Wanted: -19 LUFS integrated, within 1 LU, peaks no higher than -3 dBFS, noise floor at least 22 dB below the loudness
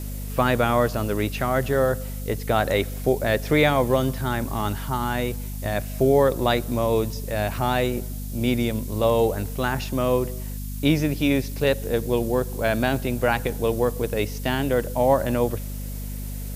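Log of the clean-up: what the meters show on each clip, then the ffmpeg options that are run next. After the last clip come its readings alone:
hum 50 Hz; harmonics up to 250 Hz; hum level -29 dBFS; noise floor -31 dBFS; noise floor target -46 dBFS; loudness -23.5 LUFS; peak -5.0 dBFS; loudness target -19.0 LUFS
-> -af "bandreject=f=50:t=h:w=6,bandreject=f=100:t=h:w=6,bandreject=f=150:t=h:w=6,bandreject=f=200:t=h:w=6,bandreject=f=250:t=h:w=6"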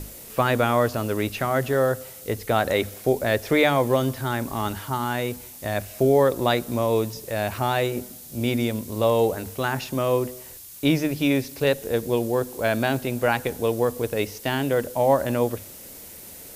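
hum none; noise floor -42 dBFS; noise floor target -46 dBFS
-> -af "afftdn=nr=6:nf=-42"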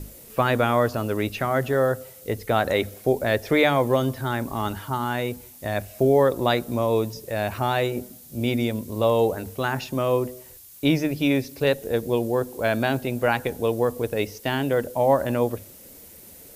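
noise floor -46 dBFS; loudness -24.0 LUFS; peak -6.0 dBFS; loudness target -19.0 LUFS
-> -af "volume=5dB,alimiter=limit=-3dB:level=0:latency=1"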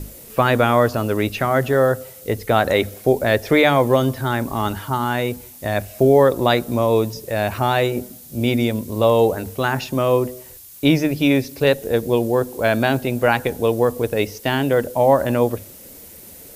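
loudness -19.0 LUFS; peak -3.0 dBFS; noise floor -41 dBFS

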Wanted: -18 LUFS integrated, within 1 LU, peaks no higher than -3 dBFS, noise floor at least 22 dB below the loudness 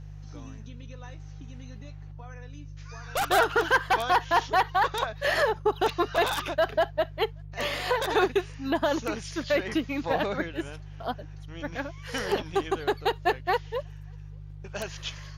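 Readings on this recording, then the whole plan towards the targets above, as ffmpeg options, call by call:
hum 50 Hz; harmonics up to 150 Hz; hum level -40 dBFS; loudness -27.5 LUFS; peak -11.0 dBFS; loudness target -18.0 LUFS
-> -af "bandreject=f=50:t=h:w=4,bandreject=f=100:t=h:w=4,bandreject=f=150:t=h:w=4"
-af "volume=9.5dB,alimiter=limit=-3dB:level=0:latency=1"

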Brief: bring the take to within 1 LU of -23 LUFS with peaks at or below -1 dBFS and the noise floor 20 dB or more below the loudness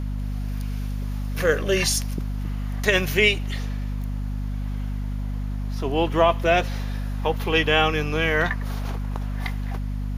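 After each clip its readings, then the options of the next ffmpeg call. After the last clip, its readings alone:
hum 50 Hz; harmonics up to 250 Hz; hum level -25 dBFS; loudness -24.5 LUFS; peak -3.0 dBFS; loudness target -23.0 LUFS
-> -af "bandreject=f=50:t=h:w=4,bandreject=f=100:t=h:w=4,bandreject=f=150:t=h:w=4,bandreject=f=200:t=h:w=4,bandreject=f=250:t=h:w=4"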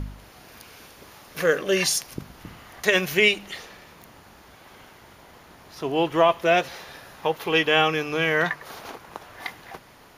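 hum none; loudness -22.0 LUFS; peak -3.5 dBFS; loudness target -23.0 LUFS
-> -af "volume=-1dB"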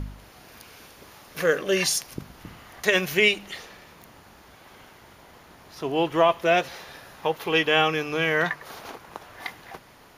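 loudness -23.0 LUFS; peak -4.5 dBFS; noise floor -52 dBFS

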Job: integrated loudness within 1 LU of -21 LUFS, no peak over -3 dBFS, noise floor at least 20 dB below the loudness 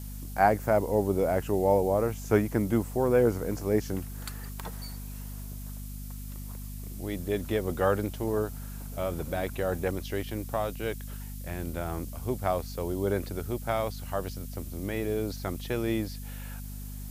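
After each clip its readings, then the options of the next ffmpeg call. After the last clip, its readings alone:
hum 50 Hz; harmonics up to 250 Hz; hum level -37 dBFS; noise floor -39 dBFS; noise floor target -50 dBFS; loudness -30.0 LUFS; peak -7.5 dBFS; loudness target -21.0 LUFS
-> -af "bandreject=f=50:t=h:w=4,bandreject=f=100:t=h:w=4,bandreject=f=150:t=h:w=4,bandreject=f=200:t=h:w=4,bandreject=f=250:t=h:w=4"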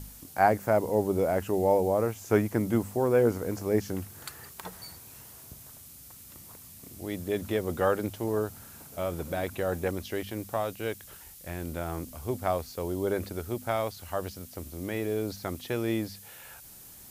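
hum none; noise floor -49 dBFS; noise floor target -50 dBFS
-> -af "afftdn=nr=6:nf=-49"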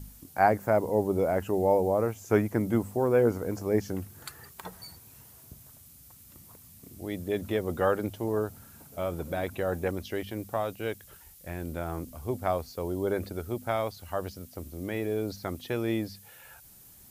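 noise floor -53 dBFS; loudness -30.0 LUFS; peak -8.0 dBFS; loudness target -21.0 LUFS
-> -af "volume=9dB,alimiter=limit=-3dB:level=0:latency=1"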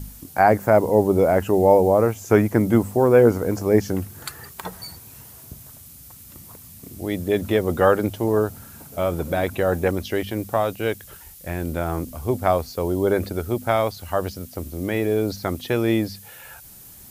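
loudness -21.0 LUFS; peak -3.0 dBFS; noise floor -44 dBFS

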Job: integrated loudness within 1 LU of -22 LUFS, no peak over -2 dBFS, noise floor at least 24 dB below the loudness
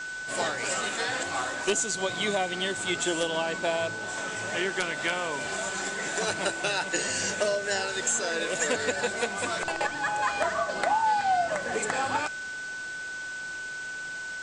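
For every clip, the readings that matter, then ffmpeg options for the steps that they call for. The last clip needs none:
steady tone 1500 Hz; tone level -34 dBFS; noise floor -37 dBFS; noise floor target -53 dBFS; loudness -28.5 LUFS; peak -13.0 dBFS; loudness target -22.0 LUFS
-> -af "bandreject=f=1.5k:w=30"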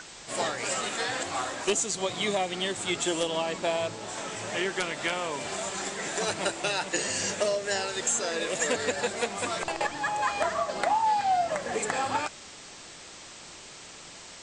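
steady tone none; noise floor -46 dBFS; noise floor target -53 dBFS
-> -af "afftdn=nr=7:nf=-46"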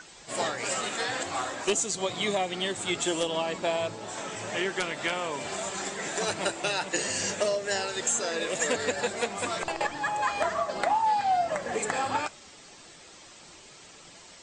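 noise floor -51 dBFS; noise floor target -53 dBFS
-> -af "afftdn=nr=6:nf=-51"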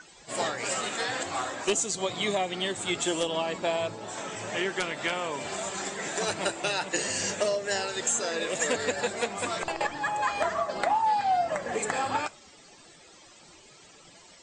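noise floor -54 dBFS; loudness -29.0 LUFS; peak -13.0 dBFS; loudness target -22.0 LUFS
-> -af "volume=7dB"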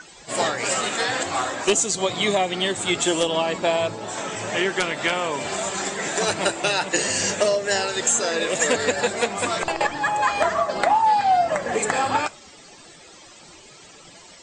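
loudness -22.0 LUFS; peak -6.0 dBFS; noise floor -47 dBFS

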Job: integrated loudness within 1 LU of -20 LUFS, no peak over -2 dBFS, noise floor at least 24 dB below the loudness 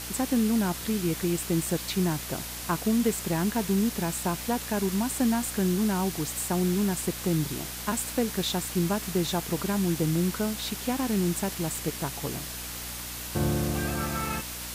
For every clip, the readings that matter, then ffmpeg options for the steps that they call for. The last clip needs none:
hum 60 Hz; harmonics up to 300 Hz; hum level -42 dBFS; noise floor -37 dBFS; noise floor target -52 dBFS; loudness -28.0 LUFS; peak -13.0 dBFS; loudness target -20.0 LUFS
-> -af "bandreject=f=60:t=h:w=4,bandreject=f=120:t=h:w=4,bandreject=f=180:t=h:w=4,bandreject=f=240:t=h:w=4,bandreject=f=300:t=h:w=4"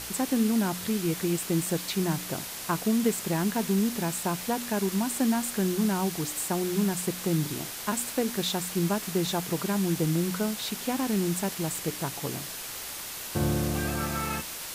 hum none; noise floor -38 dBFS; noise floor target -53 dBFS
-> -af "afftdn=nr=15:nf=-38"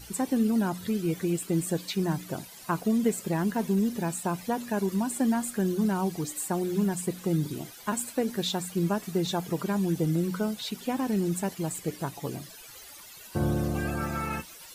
noise floor -48 dBFS; noise floor target -53 dBFS
-> -af "afftdn=nr=6:nf=-48"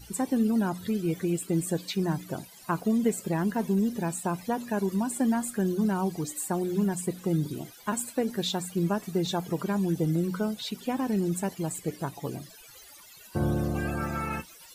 noise floor -51 dBFS; noise floor target -54 dBFS
-> -af "afftdn=nr=6:nf=-51"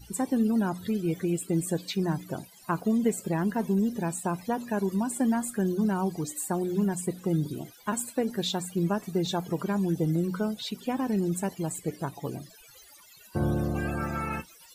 noise floor -54 dBFS; loudness -29.5 LUFS; peak -13.5 dBFS; loudness target -20.0 LUFS
-> -af "volume=9.5dB"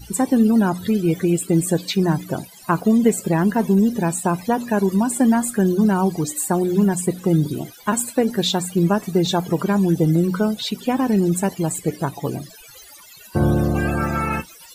loudness -20.0 LUFS; peak -4.0 dBFS; noise floor -44 dBFS

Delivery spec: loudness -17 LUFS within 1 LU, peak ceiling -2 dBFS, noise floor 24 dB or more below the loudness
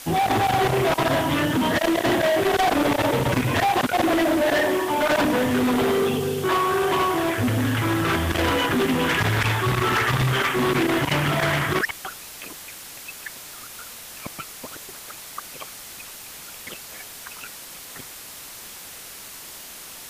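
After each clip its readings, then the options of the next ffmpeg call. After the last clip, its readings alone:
noise floor -40 dBFS; noise floor target -45 dBFS; loudness -21.0 LUFS; peak -14.5 dBFS; loudness target -17.0 LUFS
-> -af "afftdn=nr=6:nf=-40"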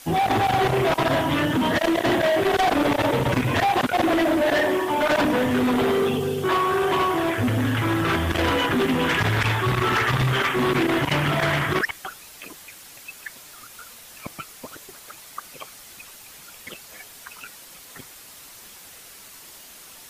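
noise floor -45 dBFS; noise floor target -46 dBFS
-> -af "afftdn=nr=6:nf=-45"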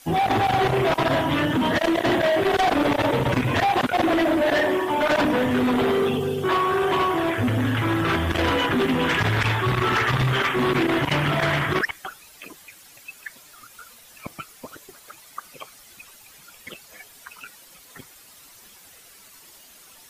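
noise floor -49 dBFS; loudness -21.5 LUFS; peak -15.5 dBFS; loudness target -17.0 LUFS
-> -af "volume=4.5dB"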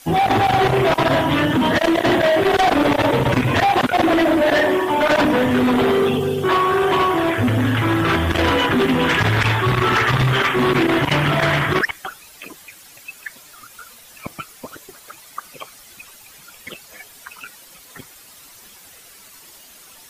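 loudness -17.0 LUFS; peak -11.0 dBFS; noise floor -45 dBFS

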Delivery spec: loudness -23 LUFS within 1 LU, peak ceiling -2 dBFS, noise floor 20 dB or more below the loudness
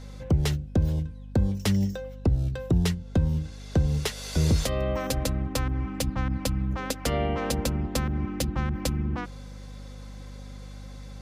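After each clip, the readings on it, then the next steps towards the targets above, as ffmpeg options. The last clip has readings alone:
hum 50 Hz; harmonics up to 250 Hz; hum level -37 dBFS; loudness -27.5 LUFS; peak -14.0 dBFS; loudness target -23.0 LUFS
-> -af "bandreject=f=50:t=h:w=4,bandreject=f=100:t=h:w=4,bandreject=f=150:t=h:w=4,bandreject=f=200:t=h:w=4,bandreject=f=250:t=h:w=4"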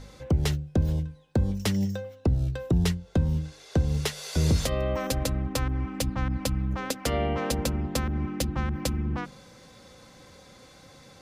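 hum none; loudness -28.5 LUFS; peak -14.0 dBFS; loudness target -23.0 LUFS
-> -af "volume=5.5dB"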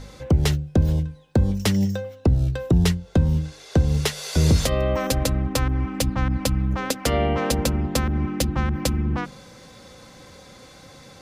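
loudness -23.0 LUFS; peak -8.5 dBFS; noise floor -47 dBFS

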